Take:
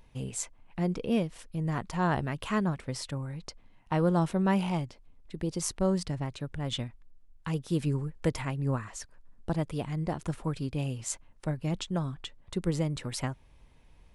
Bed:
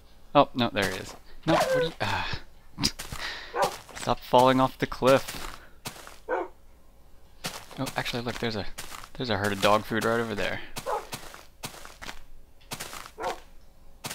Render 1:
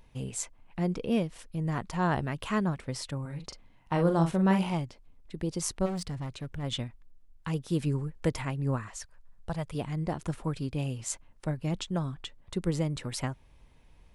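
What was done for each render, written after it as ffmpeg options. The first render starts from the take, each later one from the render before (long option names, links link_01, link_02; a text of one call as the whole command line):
ffmpeg -i in.wav -filter_complex "[0:a]asettb=1/sr,asplit=3[link_01][link_02][link_03];[link_01]atrim=end=3.214[link_04];[link_02]atrim=start=3.21:end=4.74,asetpts=PTS-STARTPTS,afade=type=in:duration=0.004:curve=qsin,afade=type=out:start_time=1.526:duration=0.004:curve=qsin,asplit=2[link_05][link_06];[link_06]adelay=42,volume=-6.5dB[link_07];[link_05][link_07]amix=inputs=2:normalize=0,atrim=end_sample=67473[link_08];[link_03]atrim=start=4.736[link_09];[link_04][link_08]acrossfade=duration=0.004:curve1=hsin:curve2=qsin[link_10];[link_10][link_09]acrossfade=duration=0.004:curve1=qsin:curve2=hsin,asplit=3[link_11][link_12][link_13];[link_11]afade=type=out:start_time=5.85:duration=0.02[link_14];[link_12]asoftclip=type=hard:threshold=-31dB,afade=type=in:start_time=5.85:duration=0.02,afade=type=out:start_time=6.62:duration=0.02[link_15];[link_13]afade=type=in:start_time=6.62:duration=0.02[link_16];[link_14][link_15][link_16]amix=inputs=3:normalize=0,asettb=1/sr,asplit=3[link_17][link_18][link_19];[link_17]atrim=end=8.904[link_20];[link_18]atrim=start=8.9:end=9.75,asetpts=PTS-STARTPTS,afade=type=in:duration=0.004:curve=qsin,afade=type=out:start_time=0.846:duration=0.004:curve=qsin,equalizer=frequency=290:width_type=o:width=0.92:gain=-14.5[link_21];[link_19]atrim=start=9.746[link_22];[link_20][link_21]acrossfade=duration=0.004:curve1=hsin:curve2=qsin[link_23];[link_23][link_22]acrossfade=duration=0.004:curve1=qsin:curve2=hsin" out.wav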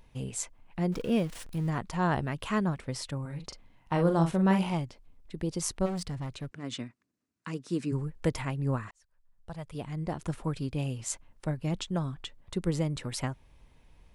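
ffmpeg -i in.wav -filter_complex "[0:a]asettb=1/sr,asplit=3[link_01][link_02][link_03];[link_01]atrim=end=0.924[link_04];[link_02]atrim=start=0.92:end=1.7,asetpts=PTS-STARTPTS,afade=type=in:duration=0.004:curve=qsin,afade=type=out:start_time=0.776:duration=0.004:curve=qsin,aeval=exprs='val(0)+0.5*0.0075*sgn(val(0))':channel_layout=same[link_05];[link_03]atrim=start=1.696[link_06];[link_04][link_05]acrossfade=duration=0.004:curve1=hsin:curve2=qsin[link_07];[link_07][link_06]acrossfade=duration=0.004:curve1=qsin:curve2=hsin,asplit=3[link_08][link_09][link_10];[link_08]afade=type=out:start_time=6.49:duration=0.02[link_11];[link_09]highpass=frequency=140:width=0.5412,highpass=frequency=140:width=1.3066,equalizer=frequency=150:width_type=q:width=4:gain=-8,equalizer=frequency=270:width_type=q:width=4:gain=3,equalizer=frequency=540:width_type=q:width=4:gain=-6,equalizer=frequency=820:width_type=q:width=4:gain=-9,equalizer=frequency=3300:width_type=q:width=4:gain=-8,lowpass=frequency=8900:width=0.5412,lowpass=frequency=8900:width=1.3066,afade=type=in:start_time=6.49:duration=0.02,afade=type=out:start_time=7.91:duration=0.02[link_12];[link_10]afade=type=in:start_time=7.91:duration=0.02[link_13];[link_11][link_12][link_13]amix=inputs=3:normalize=0,asplit=2[link_14][link_15];[link_14]atrim=end=8.91,asetpts=PTS-STARTPTS,afade=type=out:start_time=8.906:duration=0.004:curve=hsin[link_16];[link_15]atrim=start=8.91,asetpts=PTS-STARTPTS,afade=type=in:duration=1.44[link_17];[link_16][link_17]concat=n=2:v=0:a=1" out.wav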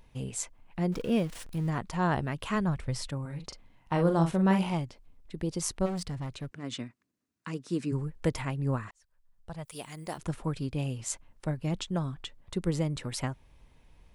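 ffmpeg -i in.wav -filter_complex "[0:a]asplit=3[link_01][link_02][link_03];[link_01]afade=type=out:start_time=2.54:duration=0.02[link_04];[link_02]asubboost=boost=6:cutoff=110,afade=type=in:start_time=2.54:duration=0.02,afade=type=out:start_time=3.07:duration=0.02[link_05];[link_03]afade=type=in:start_time=3.07:duration=0.02[link_06];[link_04][link_05][link_06]amix=inputs=3:normalize=0,asplit=3[link_07][link_08][link_09];[link_07]afade=type=out:start_time=9.64:duration=0.02[link_10];[link_08]aemphasis=mode=production:type=riaa,afade=type=in:start_time=9.64:duration=0.02,afade=type=out:start_time=10.17:duration=0.02[link_11];[link_09]afade=type=in:start_time=10.17:duration=0.02[link_12];[link_10][link_11][link_12]amix=inputs=3:normalize=0" out.wav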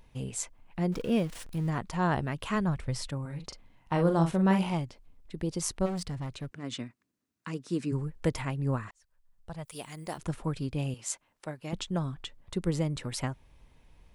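ffmpeg -i in.wav -filter_complex "[0:a]asettb=1/sr,asplit=3[link_01][link_02][link_03];[link_01]atrim=end=10.944[link_04];[link_02]atrim=start=10.94:end=11.73,asetpts=PTS-STARTPTS,afade=type=in:duration=0.004:curve=qsin,afade=type=out:start_time=0.786:duration=0.004:curve=qsin,highpass=frequency=510:poles=1[link_05];[link_03]atrim=start=11.726[link_06];[link_04][link_05]acrossfade=duration=0.004:curve1=hsin:curve2=qsin[link_07];[link_07][link_06]acrossfade=duration=0.004:curve1=qsin:curve2=hsin" out.wav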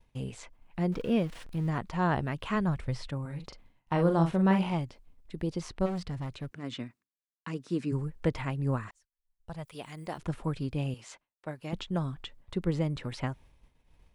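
ffmpeg -i in.wav -filter_complex "[0:a]acrossover=split=4300[link_01][link_02];[link_02]acompressor=threshold=-58dB:ratio=4:attack=1:release=60[link_03];[link_01][link_03]amix=inputs=2:normalize=0,agate=range=-33dB:threshold=-50dB:ratio=3:detection=peak" out.wav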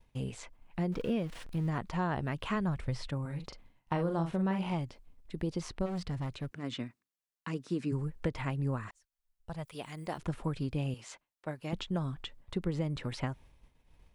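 ffmpeg -i in.wav -af "acompressor=threshold=-28dB:ratio=6" out.wav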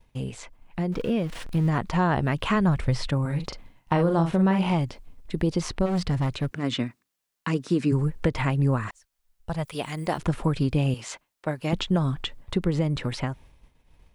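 ffmpeg -i in.wav -filter_complex "[0:a]asplit=2[link_01][link_02];[link_02]alimiter=level_in=2dB:limit=-24dB:level=0:latency=1:release=135,volume=-2dB,volume=-1.5dB[link_03];[link_01][link_03]amix=inputs=2:normalize=0,dynaudnorm=framelen=200:gausssize=13:maxgain=6dB" out.wav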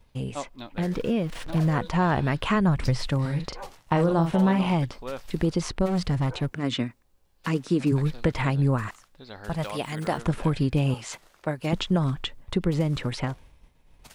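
ffmpeg -i in.wav -i bed.wav -filter_complex "[1:a]volume=-15dB[link_01];[0:a][link_01]amix=inputs=2:normalize=0" out.wav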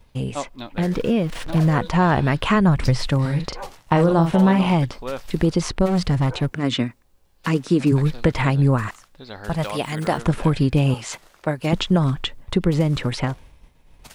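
ffmpeg -i in.wav -af "volume=5.5dB" out.wav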